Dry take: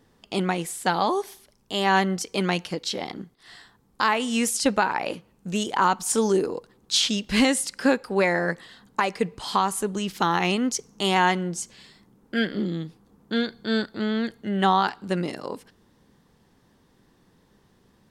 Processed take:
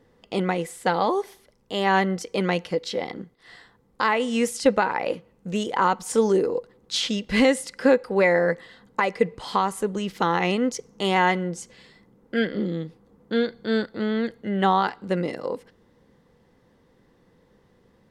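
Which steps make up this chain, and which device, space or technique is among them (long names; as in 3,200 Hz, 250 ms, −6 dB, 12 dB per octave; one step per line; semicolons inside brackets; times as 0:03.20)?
inside a helmet (high-shelf EQ 4,100 Hz −8.5 dB; hollow resonant body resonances 500/2,000 Hz, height 10 dB, ringing for 45 ms)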